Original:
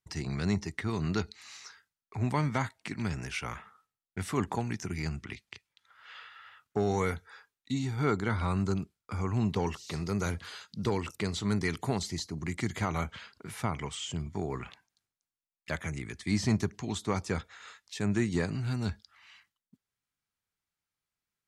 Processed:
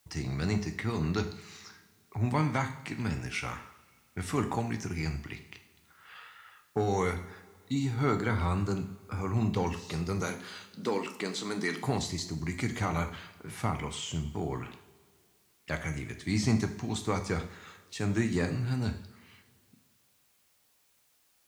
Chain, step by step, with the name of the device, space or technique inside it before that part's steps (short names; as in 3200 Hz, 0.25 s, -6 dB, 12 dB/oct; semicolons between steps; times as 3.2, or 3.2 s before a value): plain cassette with noise reduction switched in (mismatched tape noise reduction decoder only; wow and flutter; white noise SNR 36 dB); 10.21–11.81 HPF 200 Hz 24 dB/oct; two-slope reverb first 0.58 s, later 2.3 s, DRR 5.5 dB